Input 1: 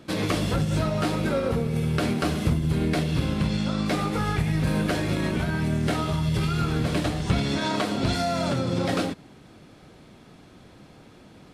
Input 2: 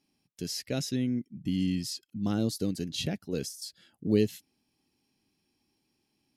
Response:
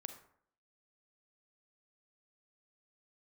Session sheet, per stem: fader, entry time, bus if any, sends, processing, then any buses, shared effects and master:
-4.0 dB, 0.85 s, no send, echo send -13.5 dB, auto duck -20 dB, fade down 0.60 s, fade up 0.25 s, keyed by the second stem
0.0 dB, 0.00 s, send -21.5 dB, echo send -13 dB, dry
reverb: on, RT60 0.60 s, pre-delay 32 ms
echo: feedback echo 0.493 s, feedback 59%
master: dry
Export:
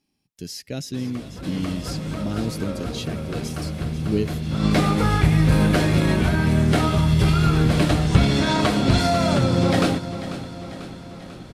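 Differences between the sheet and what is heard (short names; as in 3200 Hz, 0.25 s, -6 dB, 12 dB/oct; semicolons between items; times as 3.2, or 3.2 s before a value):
stem 1 -4.0 dB -> +5.0 dB; master: extra low shelf 79 Hz +7.5 dB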